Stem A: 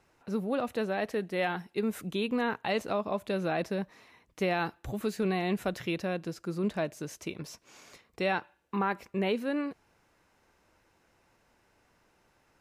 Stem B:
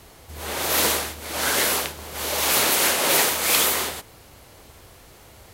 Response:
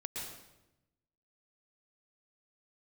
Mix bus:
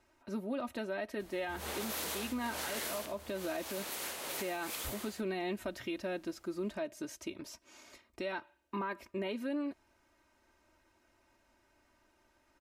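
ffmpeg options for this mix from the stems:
-filter_complex "[0:a]aecho=1:1:3.2:0.8,volume=-5dB[a];[1:a]adelay=1200,volume=-9.5dB,afade=t=out:st=2.89:d=0.69:silence=0.281838[b];[a][b]amix=inputs=2:normalize=0,alimiter=level_in=4.5dB:limit=-24dB:level=0:latency=1:release=144,volume=-4.5dB"

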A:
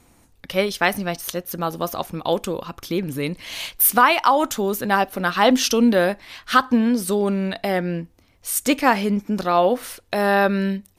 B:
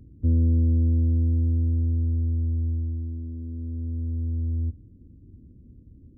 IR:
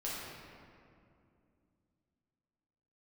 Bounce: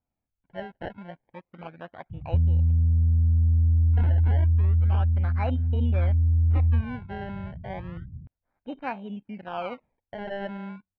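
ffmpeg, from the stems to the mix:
-filter_complex "[0:a]lowpass=2k,afwtdn=0.0501,acrusher=samples=25:mix=1:aa=0.000001:lfo=1:lforange=25:lforate=0.31,volume=-15dB,asplit=3[a][b][c];[a]atrim=end=2.81,asetpts=PTS-STARTPTS,afade=t=out:st=2.806:d=0.004:c=hsin[d];[b]atrim=start=2.81:end=3.44,asetpts=PTS-STARTPTS,volume=0[e];[c]atrim=start=3.44,asetpts=PTS-STARTPTS,afade=t=in:d=0.004:c=hsin[f];[d][e][f]concat=n=3:v=0:a=1[g];[1:a]highpass=f=52:p=1,lowshelf=f=220:t=q:w=3:g=10.5,alimiter=limit=-10.5dB:level=0:latency=1:release=83,adelay=2100,volume=-3.5dB[h];[g][h]amix=inputs=2:normalize=0,lowpass=f=2.6k:w=0.5412,lowpass=f=2.6k:w=1.3066,aecho=1:1:1.3:0.34,acompressor=threshold=-18dB:ratio=6"

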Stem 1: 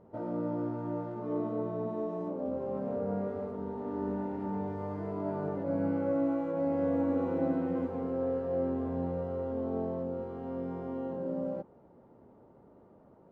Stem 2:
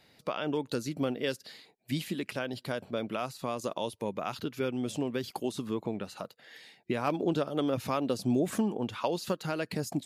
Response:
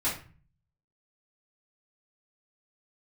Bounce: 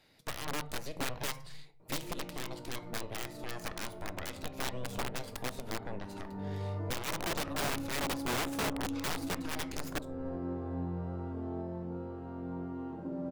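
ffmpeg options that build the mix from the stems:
-filter_complex "[0:a]equalizer=f=480:w=0.36:g=-3,adelay=1800,volume=-5.5dB,asplit=3[a][b][c];[b]volume=-4.5dB[d];[c]volume=-12.5dB[e];[1:a]aeval=exprs='0.2*(cos(1*acos(clip(val(0)/0.2,-1,1)))-cos(1*PI/2))+0.01*(cos(3*acos(clip(val(0)/0.2,-1,1)))-cos(3*PI/2))+0.1*(cos(8*acos(clip(val(0)/0.2,-1,1)))-cos(8*PI/2))':c=same,volume=-3.5dB,asplit=3[f][g][h];[g]volume=-16.5dB[i];[h]apad=whole_len=666523[j];[a][j]sidechaincompress=threshold=-41dB:ratio=3:attack=16:release=404[k];[2:a]atrim=start_sample=2205[l];[d][i]amix=inputs=2:normalize=0[m];[m][l]afir=irnorm=-1:irlink=0[n];[e]aecho=0:1:69|138|207|276|345|414|483|552|621:1|0.58|0.336|0.195|0.113|0.0656|0.0381|0.0221|0.0128[o];[k][f][n][o]amix=inputs=4:normalize=0,aeval=exprs='(mod(7.08*val(0)+1,2)-1)/7.08':c=same,alimiter=level_in=4.5dB:limit=-24dB:level=0:latency=1:release=288,volume=-4.5dB"

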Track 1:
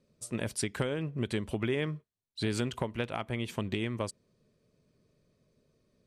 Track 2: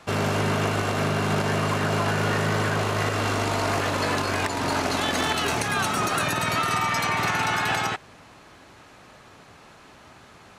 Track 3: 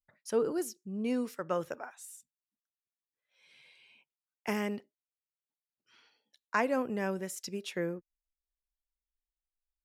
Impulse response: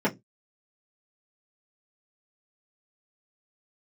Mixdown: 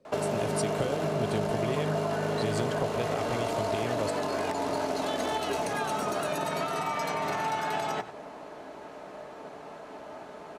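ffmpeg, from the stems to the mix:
-filter_complex "[0:a]volume=-0.5dB[a];[1:a]equalizer=f=100:t=o:w=0.33:g=-7,acompressor=threshold=-26dB:ratio=6,adelay=50,volume=-6dB,asplit=3[b][c][d];[c]volume=-16.5dB[e];[d]volume=-13dB[f];[3:a]atrim=start_sample=2205[g];[e][g]afir=irnorm=-1:irlink=0[h];[f]aecho=0:1:96:1[i];[a][b][h][i]amix=inputs=4:normalize=0,equalizer=f=620:w=0.81:g=13.5,acrossover=split=150|3000[j][k][l];[k]acompressor=threshold=-30dB:ratio=3[m];[j][m][l]amix=inputs=3:normalize=0"

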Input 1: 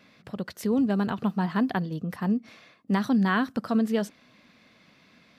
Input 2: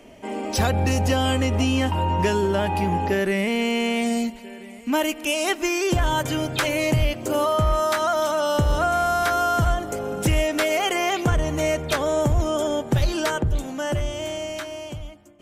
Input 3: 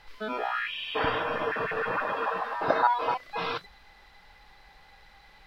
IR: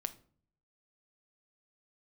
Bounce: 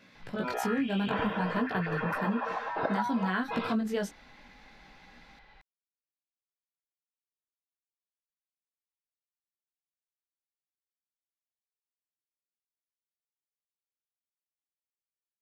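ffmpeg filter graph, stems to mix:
-filter_complex "[0:a]equalizer=f=1.5k:t=o:w=0.77:g=3.5,flanger=delay=16.5:depth=5.1:speed=0.59,volume=1.5dB[a];[2:a]lowpass=3.4k,adelay=150,volume=-2dB[b];[a][b]amix=inputs=2:normalize=0,equalizer=f=6.5k:t=o:w=0.38:g=3,bandreject=f=1.2k:w=13,acompressor=threshold=-26dB:ratio=6"

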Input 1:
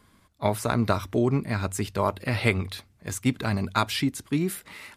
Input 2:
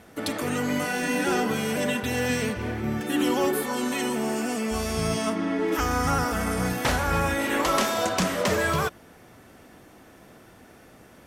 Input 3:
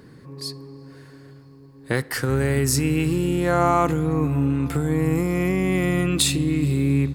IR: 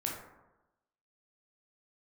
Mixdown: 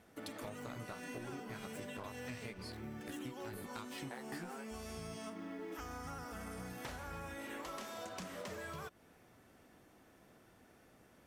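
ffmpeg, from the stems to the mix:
-filter_complex "[0:a]aeval=exprs='sgn(val(0))*max(abs(val(0))-0.0266,0)':c=same,volume=-5dB,asplit=2[a][b];[1:a]acrusher=bits=8:mode=log:mix=0:aa=0.000001,volume=-13.5dB[c];[2:a]highpass=f=770:t=q:w=4.9,adelay=2200,volume=-9dB[d];[b]apad=whole_len=412027[e];[d][e]sidechaingate=range=-33dB:threshold=-50dB:ratio=16:detection=peak[f];[a][f]amix=inputs=2:normalize=0,flanger=delay=15.5:depth=2.3:speed=1.2,alimiter=limit=-24dB:level=0:latency=1:release=283,volume=0dB[g];[c][g]amix=inputs=2:normalize=0,acompressor=threshold=-43dB:ratio=6"

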